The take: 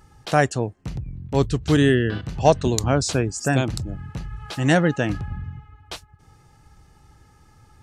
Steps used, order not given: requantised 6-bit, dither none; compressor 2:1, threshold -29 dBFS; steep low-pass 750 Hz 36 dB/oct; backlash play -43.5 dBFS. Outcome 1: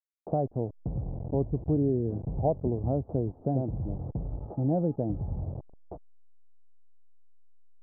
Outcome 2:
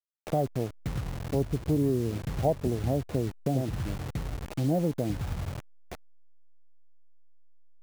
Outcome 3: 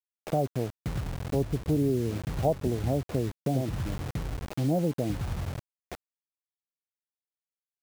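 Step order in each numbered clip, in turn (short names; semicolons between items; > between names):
requantised > backlash > compressor > steep low-pass; steep low-pass > requantised > compressor > backlash; backlash > steep low-pass > requantised > compressor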